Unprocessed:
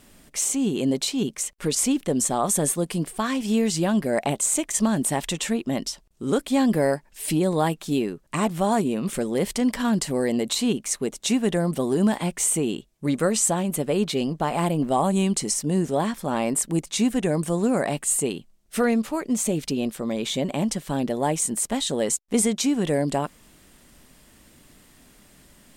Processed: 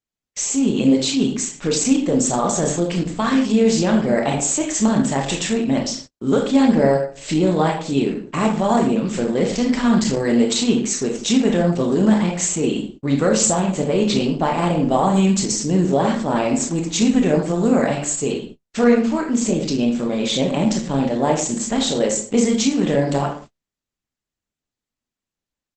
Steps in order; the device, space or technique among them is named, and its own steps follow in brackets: speakerphone in a meeting room (reverberation RT60 0.45 s, pre-delay 21 ms, DRR 0.5 dB; speakerphone echo 80 ms, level -15 dB; level rider gain up to 4 dB; gate -35 dBFS, range -43 dB; Opus 12 kbps 48 kHz)

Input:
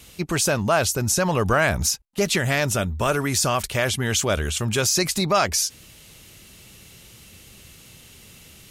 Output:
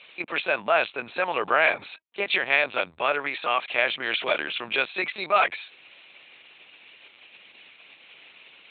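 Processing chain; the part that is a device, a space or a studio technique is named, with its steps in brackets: 3.29–3.74 s: high-pass 220 Hz 12 dB/octave; talking toy (LPC vocoder at 8 kHz pitch kept; high-pass 570 Hz 12 dB/octave; peaking EQ 2.4 kHz +8.5 dB 0.27 oct)

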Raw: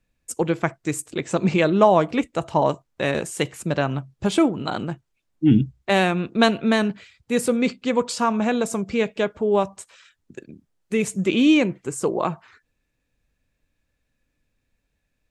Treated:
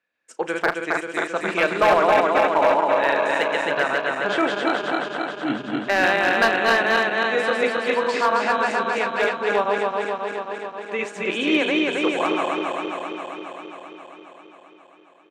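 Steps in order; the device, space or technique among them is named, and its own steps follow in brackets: backward echo that repeats 134 ms, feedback 84%, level -1.5 dB; megaphone (band-pass 510–3500 Hz; peaking EQ 1.6 kHz +7 dB 0.47 oct; hard clipper -10.5 dBFS, distortion -17 dB; doubling 35 ms -14 dB)

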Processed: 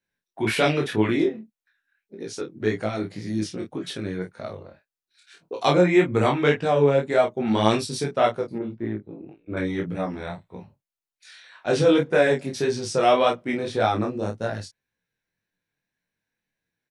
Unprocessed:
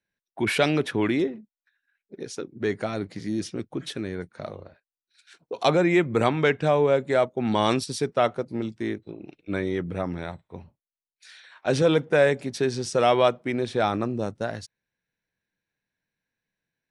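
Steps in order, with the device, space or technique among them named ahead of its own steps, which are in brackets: double-tracked vocal (doubling 28 ms -4.5 dB; chorus 1.8 Hz, delay 17 ms, depth 5.3 ms); 8.58–9.57 s: Bessel low-pass 1.2 kHz, order 2; trim +3 dB

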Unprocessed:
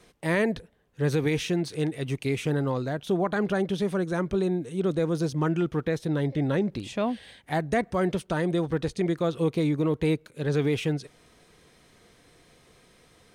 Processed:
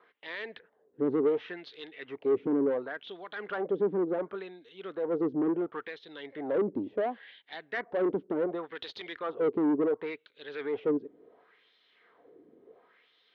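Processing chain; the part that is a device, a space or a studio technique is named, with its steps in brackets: 8.75–9.19 s: treble shelf 2.6 kHz +12 dB; wah-wah guitar rig (wah-wah 0.7 Hz 290–3800 Hz, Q 2.3; valve stage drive 31 dB, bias 0.25; cabinet simulation 95–3500 Hz, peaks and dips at 140 Hz -8 dB, 280 Hz +4 dB, 430 Hz +7 dB, 2.5 kHz -6 dB); trim +4.5 dB

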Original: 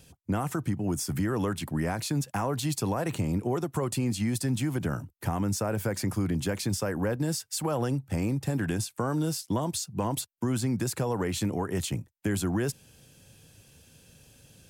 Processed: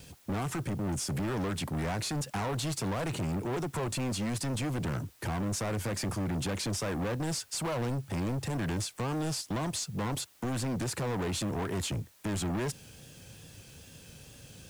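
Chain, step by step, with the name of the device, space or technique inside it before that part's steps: compact cassette (saturation -35 dBFS, distortion -7 dB; low-pass 9.7 kHz 12 dB/octave; wow and flutter; white noise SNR 28 dB); trim +5 dB

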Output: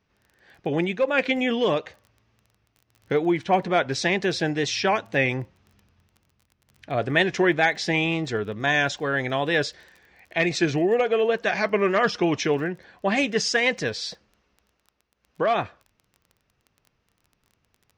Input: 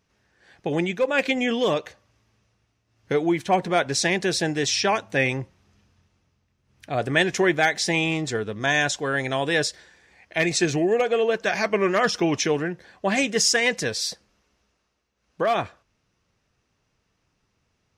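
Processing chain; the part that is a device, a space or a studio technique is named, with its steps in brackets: lo-fi chain (low-pass 4.3 kHz 12 dB/octave; wow and flutter; crackle 21 per s -40 dBFS)

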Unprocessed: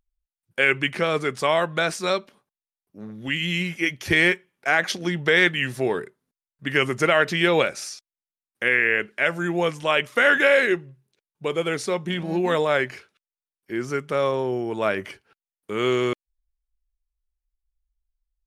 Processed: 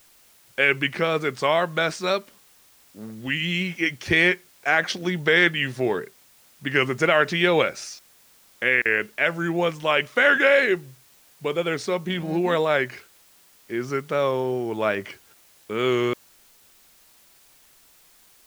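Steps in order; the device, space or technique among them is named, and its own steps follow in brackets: worn cassette (low-pass 6.8 kHz; wow and flutter; level dips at 8.82 s, 33 ms -30 dB; white noise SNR 31 dB)

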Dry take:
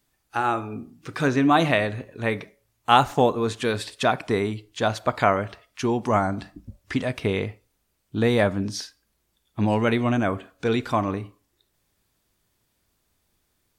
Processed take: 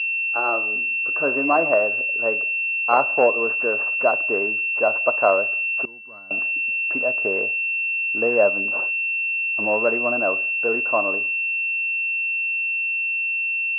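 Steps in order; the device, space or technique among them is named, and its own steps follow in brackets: toy sound module (decimation joined by straight lines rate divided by 8×; class-D stage that switches slowly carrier 2.7 kHz; cabinet simulation 550–4000 Hz, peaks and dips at 580 Hz +6 dB, 830 Hz -6 dB, 1.9 kHz -8 dB, 3.7 kHz -9 dB); 5.85–6.31 s: amplifier tone stack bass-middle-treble 6-0-2; trim +5 dB

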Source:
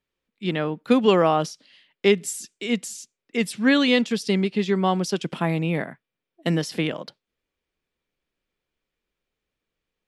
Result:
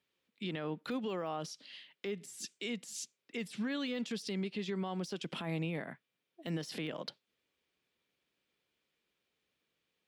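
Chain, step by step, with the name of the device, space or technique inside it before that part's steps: dynamic bell 3.3 kHz, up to -3 dB, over -36 dBFS, Q 1; broadcast voice chain (high-pass 110 Hz 12 dB/octave; de-esser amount 80%; compression 3:1, threshold -34 dBFS, peak gain reduction 15.5 dB; peaking EQ 3.5 kHz +5 dB 1.4 oct; peak limiter -28 dBFS, peak gain reduction 11 dB); trim -1 dB

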